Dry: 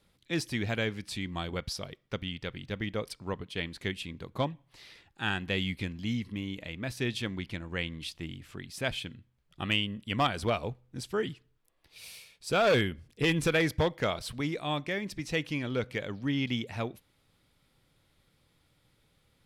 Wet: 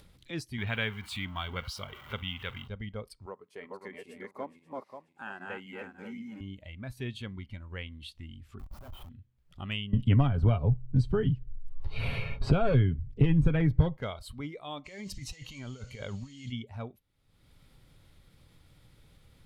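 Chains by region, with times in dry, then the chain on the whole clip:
0:00.58–0:02.68: converter with a step at zero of −40 dBFS + high-pass filter 58 Hz + flat-topped bell 1,800 Hz +8.5 dB 2.3 octaves
0:03.26–0:06.41: feedback delay that plays each chunk backwards 267 ms, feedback 44%, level −1 dB + high-pass filter 300 Hz + parametric band 3,400 Hz −13.5 dB 0.78 octaves
0:08.59–0:09.09: downward compressor 16 to 1, threshold −34 dBFS + comparator with hysteresis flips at −40 dBFS
0:09.93–0:13.97: RIAA equalisation playback + comb filter 7.3 ms, depth 40% + multiband upward and downward compressor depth 100%
0:14.84–0:16.51: parametric band 290 Hz −4 dB + compressor whose output falls as the input rises −40 dBFS + noise in a band 2,000–7,200 Hz −48 dBFS
whole clip: noise reduction from a noise print of the clip's start 11 dB; low-shelf EQ 130 Hz +11 dB; upward compression, threshold −31 dBFS; level −7.5 dB

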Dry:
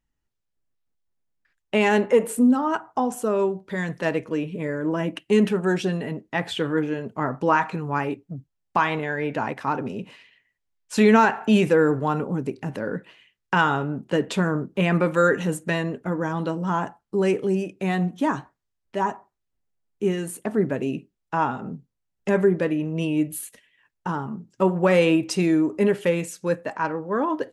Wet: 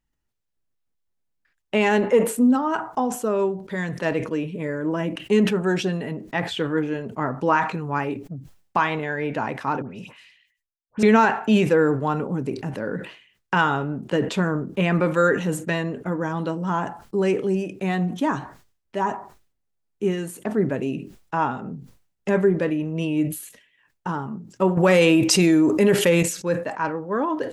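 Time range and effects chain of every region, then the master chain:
0:09.82–0:11.03: downward expander −58 dBFS + parametric band 400 Hz −9 dB 2.2 octaves + all-pass dispersion highs, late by 95 ms, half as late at 1,900 Hz
0:24.77–0:26.23: high-shelf EQ 5,000 Hz +10 dB + envelope flattener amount 70%
whole clip: dynamic equaliser 9,600 Hz, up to −6 dB, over −57 dBFS, Q 2.8; level that may fall only so fast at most 110 dB per second

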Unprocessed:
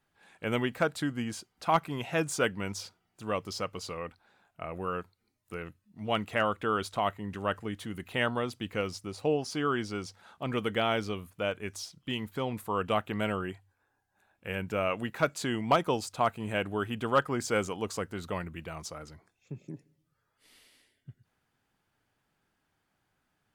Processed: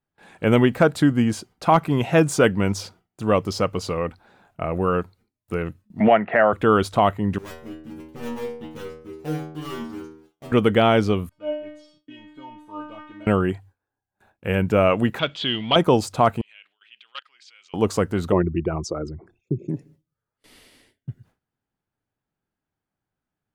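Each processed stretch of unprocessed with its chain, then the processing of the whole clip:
0:06.00–0:06.53: loudspeaker in its box 260–2,100 Hz, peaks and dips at 290 Hz −9 dB, 460 Hz −4 dB, 670 Hz +7 dB, 1,100 Hz −6 dB, 1,800 Hz +9 dB + multiband upward and downward compressor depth 100%
0:07.38–0:10.52: gap after every zero crossing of 0.29 ms + stiff-string resonator 77 Hz, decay 0.78 s, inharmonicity 0.002
0:11.29–0:13.27: mu-law and A-law mismatch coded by mu + low-pass filter 3,900 Hz + stiff-string resonator 300 Hz, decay 0.65 s, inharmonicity 0.002
0:15.19–0:15.76: mu-law and A-law mismatch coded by mu + transistor ladder low-pass 3,400 Hz, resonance 85% + high-shelf EQ 2,100 Hz +10.5 dB
0:16.41–0:17.74: output level in coarse steps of 23 dB + flat-topped band-pass 3,200 Hz, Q 1.5
0:18.32–0:19.69: spectral envelope exaggerated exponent 2 + parametric band 360 Hz +12 dB 0.35 octaves
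whole clip: noise gate with hold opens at −56 dBFS; tilt shelving filter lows +4.5 dB, about 940 Hz; boost into a limiter +15.5 dB; level −4.5 dB

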